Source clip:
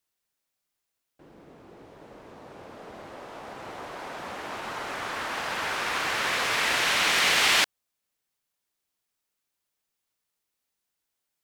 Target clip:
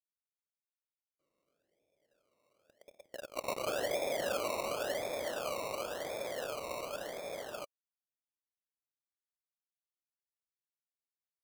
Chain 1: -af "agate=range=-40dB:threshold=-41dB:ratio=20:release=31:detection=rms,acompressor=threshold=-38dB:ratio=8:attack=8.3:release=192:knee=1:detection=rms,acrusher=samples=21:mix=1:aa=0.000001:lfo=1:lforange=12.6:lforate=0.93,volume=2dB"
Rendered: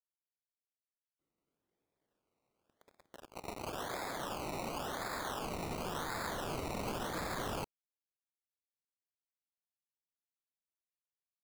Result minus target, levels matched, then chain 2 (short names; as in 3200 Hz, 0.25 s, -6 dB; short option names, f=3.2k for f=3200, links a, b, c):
500 Hz band -4.5 dB
-af "agate=range=-40dB:threshold=-41dB:ratio=20:release=31:detection=rms,acompressor=threshold=-38dB:ratio=8:attack=8.3:release=192:knee=1:detection=rms,lowpass=f=580:t=q:w=5.7,acrusher=samples=21:mix=1:aa=0.000001:lfo=1:lforange=12.6:lforate=0.93,volume=2dB"